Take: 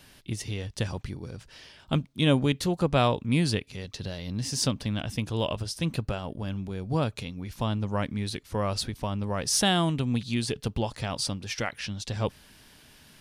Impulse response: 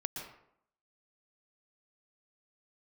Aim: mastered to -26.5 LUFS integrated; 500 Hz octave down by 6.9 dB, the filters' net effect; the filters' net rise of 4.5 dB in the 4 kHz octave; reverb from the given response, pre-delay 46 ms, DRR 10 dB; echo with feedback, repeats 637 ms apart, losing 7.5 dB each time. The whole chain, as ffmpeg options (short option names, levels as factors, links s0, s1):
-filter_complex "[0:a]equalizer=f=500:t=o:g=-9,equalizer=f=4000:t=o:g=6,aecho=1:1:637|1274|1911|2548|3185:0.422|0.177|0.0744|0.0312|0.0131,asplit=2[s0][s1];[1:a]atrim=start_sample=2205,adelay=46[s2];[s1][s2]afir=irnorm=-1:irlink=0,volume=0.282[s3];[s0][s3]amix=inputs=2:normalize=0,volume=1.12"